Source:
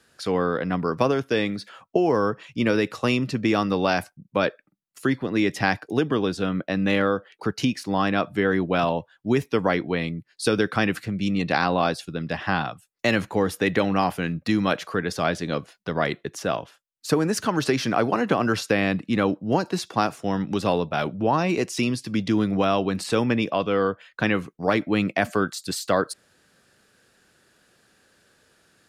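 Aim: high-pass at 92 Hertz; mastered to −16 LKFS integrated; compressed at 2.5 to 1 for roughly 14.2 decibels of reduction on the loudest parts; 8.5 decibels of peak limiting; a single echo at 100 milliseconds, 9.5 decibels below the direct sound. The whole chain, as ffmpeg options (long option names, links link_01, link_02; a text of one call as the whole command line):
ffmpeg -i in.wav -af "highpass=92,acompressor=threshold=-39dB:ratio=2.5,alimiter=level_in=3dB:limit=-24dB:level=0:latency=1,volume=-3dB,aecho=1:1:100:0.335,volume=22.5dB" out.wav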